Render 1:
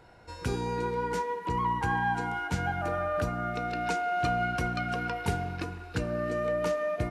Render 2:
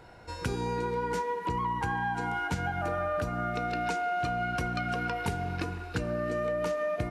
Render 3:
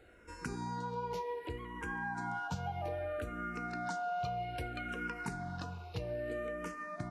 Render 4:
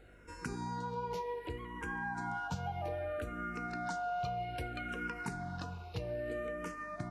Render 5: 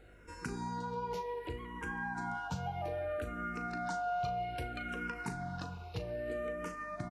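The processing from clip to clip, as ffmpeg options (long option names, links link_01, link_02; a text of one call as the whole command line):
ffmpeg -i in.wav -af "acompressor=threshold=-31dB:ratio=6,volume=3.5dB" out.wav
ffmpeg -i in.wav -filter_complex "[0:a]asplit=2[link_01][link_02];[link_02]afreqshift=-0.63[link_03];[link_01][link_03]amix=inputs=2:normalize=1,volume=-5dB" out.wav
ffmpeg -i in.wav -af "aeval=exprs='val(0)+0.000891*(sin(2*PI*50*n/s)+sin(2*PI*2*50*n/s)/2+sin(2*PI*3*50*n/s)/3+sin(2*PI*4*50*n/s)/4+sin(2*PI*5*50*n/s)/5)':channel_layout=same" out.wav
ffmpeg -i in.wav -filter_complex "[0:a]asplit=2[link_01][link_02];[link_02]adelay=38,volume=-12dB[link_03];[link_01][link_03]amix=inputs=2:normalize=0" out.wav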